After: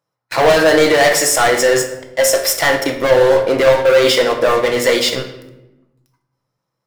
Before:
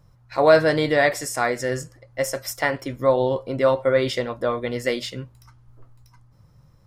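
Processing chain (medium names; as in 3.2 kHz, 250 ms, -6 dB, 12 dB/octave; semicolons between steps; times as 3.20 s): high-pass 380 Hz 12 dB/octave; waveshaping leveller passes 5; peak limiter -7.5 dBFS, peak gain reduction 3.5 dB; simulated room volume 360 m³, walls mixed, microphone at 0.7 m; trim -1.5 dB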